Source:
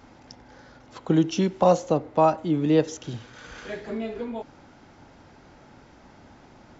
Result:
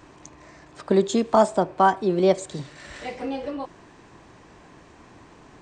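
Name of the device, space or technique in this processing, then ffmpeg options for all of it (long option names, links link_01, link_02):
nightcore: -af "asetrate=53361,aresample=44100,volume=1.5dB"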